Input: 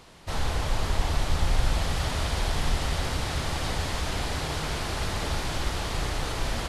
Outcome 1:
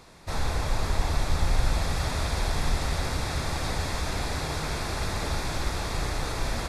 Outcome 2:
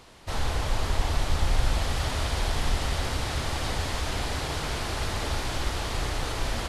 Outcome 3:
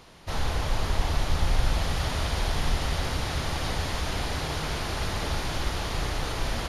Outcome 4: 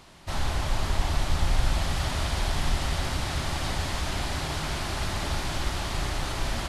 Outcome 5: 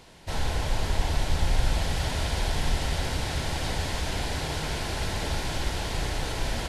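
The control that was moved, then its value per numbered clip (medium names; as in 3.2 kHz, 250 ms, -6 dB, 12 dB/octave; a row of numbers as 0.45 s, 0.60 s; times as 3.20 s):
band-stop, frequency: 3 kHz, 170 Hz, 7.9 kHz, 470 Hz, 1.2 kHz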